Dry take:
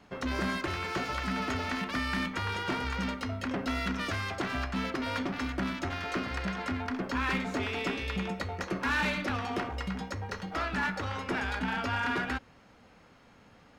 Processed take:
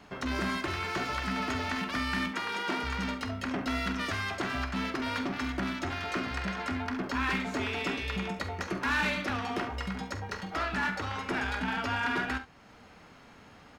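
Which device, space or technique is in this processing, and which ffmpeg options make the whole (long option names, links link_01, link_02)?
parallel compression: -filter_complex "[0:a]asettb=1/sr,asplit=3[link_01][link_02][link_03];[link_01]atrim=end=2.314[link_04];[link_02]atrim=start=2.31:end=2.83,asetpts=PTS-STARTPTS,afade=type=in:duration=0.004:curve=qsin,afade=type=out:start_time=0.516:duration=0.004:curve=qsin,highpass=frequency=180:width=0.5412,highpass=frequency=180:width=1.3066[link_05];[link_03]atrim=start=2.826[link_06];[link_04][link_05]acrossfade=duration=0.004:curve1=hsin:curve2=qsin[link_07];[link_07][link_06]acrossfade=duration=0.004:curve1=qsin:curve2=hsin,lowshelf=frequency=400:gain=-2.5,bandreject=frequency=520:width=13,asplit=2[link_08][link_09];[link_09]acompressor=threshold=-52dB:ratio=6,volume=-2dB[link_10];[link_08][link_10]amix=inputs=2:normalize=0,aecho=1:1:46|70:0.251|0.178"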